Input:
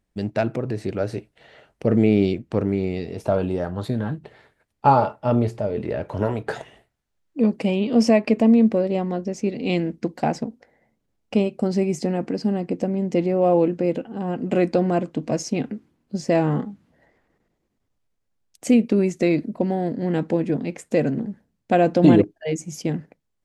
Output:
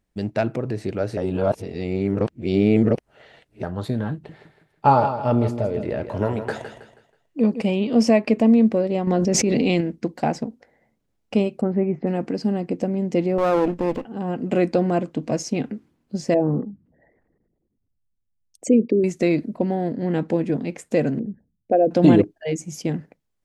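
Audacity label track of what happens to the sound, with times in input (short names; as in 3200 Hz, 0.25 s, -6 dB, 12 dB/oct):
1.170000	3.630000	reverse
4.130000	7.610000	feedback echo 0.161 s, feedback 35%, level -10 dB
9.070000	9.810000	fast leveller amount 100%
11.610000	12.070000	LPF 1900 Hz 24 dB/oct
13.380000	14.050000	minimum comb delay 0.38 ms
16.340000	19.040000	formant sharpening exponent 2
19.570000	20.290000	high shelf 7600 Hz -8.5 dB
21.190000	21.910000	formant sharpening exponent 2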